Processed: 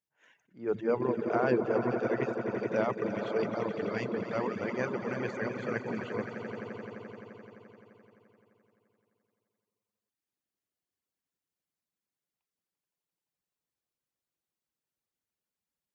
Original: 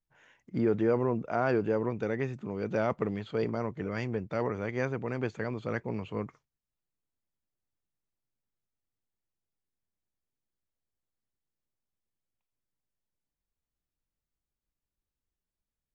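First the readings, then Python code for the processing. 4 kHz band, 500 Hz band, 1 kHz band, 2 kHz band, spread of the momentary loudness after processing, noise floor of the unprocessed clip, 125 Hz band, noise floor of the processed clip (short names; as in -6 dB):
+1.0 dB, +0.5 dB, +0.5 dB, +1.5 dB, 13 LU, under -85 dBFS, -5.5 dB, under -85 dBFS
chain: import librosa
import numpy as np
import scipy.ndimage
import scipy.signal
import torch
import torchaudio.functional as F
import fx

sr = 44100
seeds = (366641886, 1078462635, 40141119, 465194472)

y = fx.echo_swell(x, sr, ms=86, loudest=5, wet_db=-9.0)
y = fx.dereverb_blind(y, sr, rt60_s=0.9)
y = scipy.signal.sosfilt(scipy.signal.bessel(2, 180.0, 'highpass', norm='mag', fs=sr, output='sos'), y)
y = fx.attack_slew(y, sr, db_per_s=210.0)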